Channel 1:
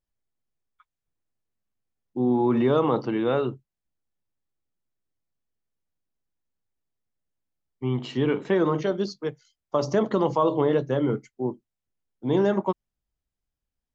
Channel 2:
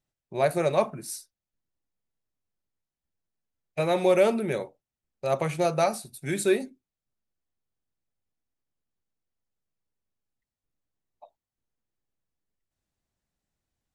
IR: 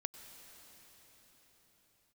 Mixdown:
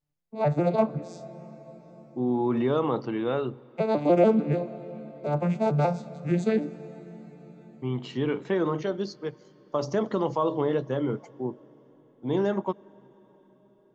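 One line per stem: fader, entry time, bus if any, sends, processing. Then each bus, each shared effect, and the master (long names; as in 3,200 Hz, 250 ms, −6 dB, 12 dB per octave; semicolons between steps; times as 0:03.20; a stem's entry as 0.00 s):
−5.0 dB, 0.00 s, send −13.5 dB, no processing
−2.0 dB, 0.00 s, send −3 dB, vocoder with an arpeggio as carrier minor triad, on D3, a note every 146 ms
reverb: on, pre-delay 89 ms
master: no processing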